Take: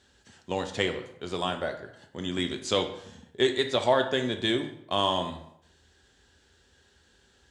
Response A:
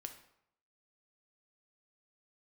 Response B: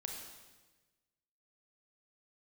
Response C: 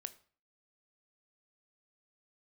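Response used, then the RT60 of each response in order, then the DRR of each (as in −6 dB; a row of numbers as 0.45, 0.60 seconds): A; 0.75, 1.2, 0.45 seconds; 5.5, 1.0, 11.5 decibels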